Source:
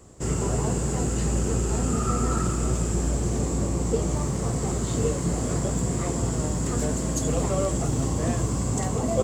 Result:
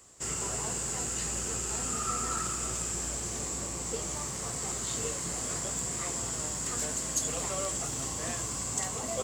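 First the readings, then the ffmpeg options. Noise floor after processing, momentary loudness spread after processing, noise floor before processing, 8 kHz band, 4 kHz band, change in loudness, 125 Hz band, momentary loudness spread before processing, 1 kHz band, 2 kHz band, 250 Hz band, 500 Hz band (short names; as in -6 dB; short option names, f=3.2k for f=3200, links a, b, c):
-36 dBFS, 3 LU, -28 dBFS, +2.0 dB, +1.0 dB, -5.5 dB, -16.5 dB, 2 LU, -5.5 dB, -1.5 dB, -15.0 dB, -11.5 dB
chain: -af "tiltshelf=f=790:g=-9.5,volume=-7.5dB"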